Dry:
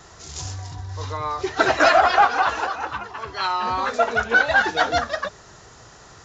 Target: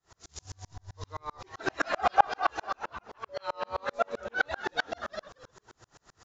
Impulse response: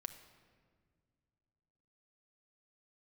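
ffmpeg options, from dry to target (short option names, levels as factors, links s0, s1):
-filter_complex "[0:a]asettb=1/sr,asplit=3[s0][s1][s2];[s0]atrim=end=1.994[s3];[s1]atrim=start=1.99:end=2.75,asetpts=PTS-STARTPTS,afade=t=in:d=0.004:c=qsin,afade=t=out:st=0.756:d=0.004:c=qsin,aecho=1:1:2.5:0.8,atrim=end_sample=33516[s4];[s2]atrim=start=2.746[s5];[s3][s4]acrossfade=d=0.004:c1=hsin:c2=qsin[s6];[s6][s5]acrossfade=d=0.004:c1=qsin:c2=hsin,asettb=1/sr,asplit=3[s7][s8][s9];[s7]atrim=end=3.294[s10];[s8]atrim=start=3.29:end=4.27,asetpts=PTS-STARTPTS,afade=t=in:d=0.004:c=qsin,afade=t=out:st=0.976:d=0.004:c=qsin,aeval=exprs='val(0)+0.0708*sin(2*PI*570*n/s)':c=same[s11];[s9]atrim=start=4.266[s12];[s10][s11]acrossfade=d=0.004:c1=hsin:c2=qsin[s13];[s13][s12]acrossfade=d=0.004:c1=qsin:c2=hsin,asplit=5[s14][s15][s16][s17][s18];[s15]adelay=226,afreqshift=-96,volume=0.316[s19];[s16]adelay=452,afreqshift=-192,volume=0.105[s20];[s17]adelay=678,afreqshift=-288,volume=0.0343[s21];[s18]adelay=904,afreqshift=-384,volume=0.0114[s22];[s14][s19][s20][s21][s22]amix=inputs=5:normalize=0,aeval=exprs='val(0)*pow(10,-40*if(lt(mod(-7.7*n/s,1),2*abs(-7.7)/1000),1-mod(-7.7*n/s,1)/(2*abs(-7.7)/1000),(mod(-7.7*n/s,1)-2*abs(-7.7)/1000)/(1-2*abs(-7.7)/1000))/20)':c=same,volume=0.596"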